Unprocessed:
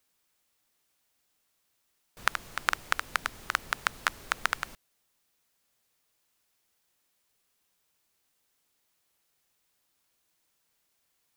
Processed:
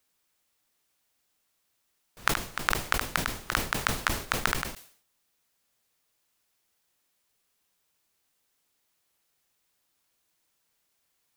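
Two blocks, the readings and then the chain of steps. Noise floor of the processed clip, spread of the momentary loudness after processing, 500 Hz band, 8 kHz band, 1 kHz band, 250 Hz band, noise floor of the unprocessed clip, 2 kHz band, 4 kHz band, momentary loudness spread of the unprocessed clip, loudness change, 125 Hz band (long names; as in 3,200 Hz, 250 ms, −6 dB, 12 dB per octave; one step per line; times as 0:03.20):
−76 dBFS, 4 LU, +8.0 dB, +6.0 dB, +1.0 dB, +14.0 dB, −76 dBFS, +0.5 dB, +3.0 dB, 4 LU, +2.5 dB, +15.0 dB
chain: level that may fall only so fast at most 110 dB per second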